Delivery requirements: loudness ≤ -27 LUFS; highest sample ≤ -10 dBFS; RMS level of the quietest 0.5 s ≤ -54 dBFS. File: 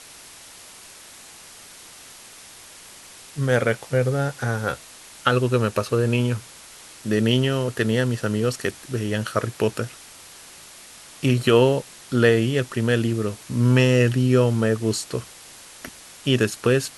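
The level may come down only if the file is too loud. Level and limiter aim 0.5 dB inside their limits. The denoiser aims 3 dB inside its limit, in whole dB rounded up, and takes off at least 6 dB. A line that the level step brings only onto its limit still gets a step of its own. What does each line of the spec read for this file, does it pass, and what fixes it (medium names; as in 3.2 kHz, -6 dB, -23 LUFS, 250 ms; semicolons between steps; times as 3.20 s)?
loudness -22.0 LUFS: fail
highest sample -3.5 dBFS: fail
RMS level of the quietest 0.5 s -44 dBFS: fail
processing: noise reduction 8 dB, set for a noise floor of -44 dBFS; trim -5.5 dB; peak limiter -10.5 dBFS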